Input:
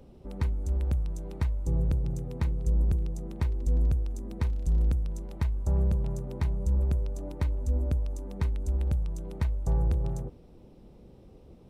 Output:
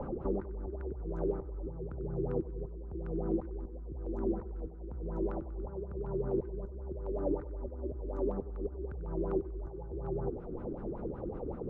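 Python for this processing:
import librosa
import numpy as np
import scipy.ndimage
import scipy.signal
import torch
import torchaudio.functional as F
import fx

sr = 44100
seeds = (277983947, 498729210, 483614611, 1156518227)

p1 = fx.dynamic_eq(x, sr, hz=380.0, q=4.3, threshold_db=-57.0, ratio=4.0, max_db=6)
p2 = fx.over_compress(p1, sr, threshold_db=-37.0, ratio=-1.0)
p3 = fx.filter_lfo_lowpass(p2, sr, shape='sine', hz=5.3, low_hz=330.0, high_hz=1500.0, q=6.4)
p4 = p3 + fx.echo_feedback(p3, sr, ms=95, feedback_pct=51, wet_db=-17.0, dry=0)
p5 = fx.band_squash(p4, sr, depth_pct=70)
y = p5 * librosa.db_to_amplitude(-4.0)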